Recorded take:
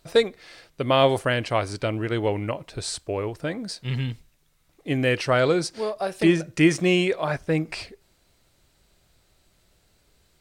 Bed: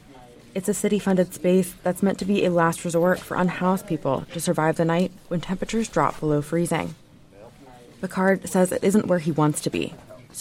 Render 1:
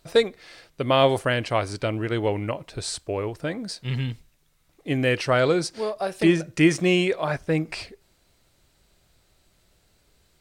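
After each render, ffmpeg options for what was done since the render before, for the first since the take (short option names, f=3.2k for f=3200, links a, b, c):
-af anull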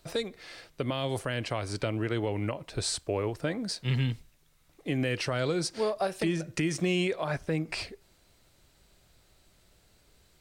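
-filter_complex "[0:a]acrossover=split=250|3000[a][b][c];[b]acompressor=threshold=-23dB:ratio=6[d];[a][d][c]amix=inputs=3:normalize=0,alimiter=limit=-19dB:level=0:latency=1:release=251"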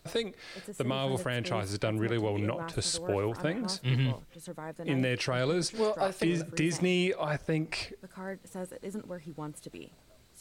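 -filter_complex "[1:a]volume=-20dB[a];[0:a][a]amix=inputs=2:normalize=0"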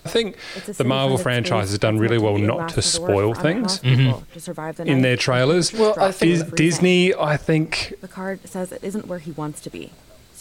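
-af "volume=12dB"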